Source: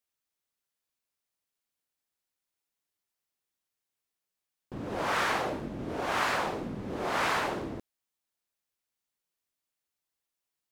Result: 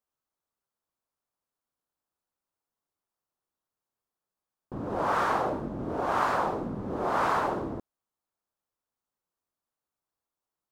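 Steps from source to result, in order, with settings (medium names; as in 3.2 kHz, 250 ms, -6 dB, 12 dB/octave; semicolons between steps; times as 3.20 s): resonant high shelf 1.6 kHz -9 dB, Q 1.5; trim +2.5 dB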